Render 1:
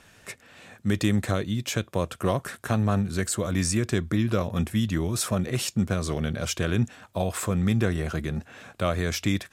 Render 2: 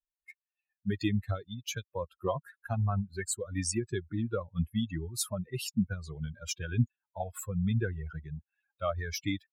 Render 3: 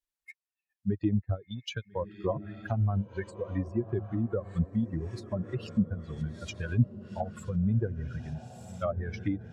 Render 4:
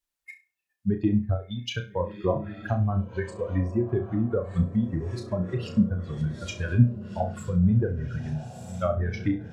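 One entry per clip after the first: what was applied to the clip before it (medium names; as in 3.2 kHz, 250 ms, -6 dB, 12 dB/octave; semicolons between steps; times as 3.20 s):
expander on every frequency bin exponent 3
transient shaper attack 0 dB, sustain -6 dB; echo that smears into a reverb 1350 ms, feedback 41%, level -13 dB; low-pass that closes with the level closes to 760 Hz, closed at -29 dBFS; trim +2.5 dB
flutter echo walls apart 5.7 m, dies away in 0.29 s; trim +4.5 dB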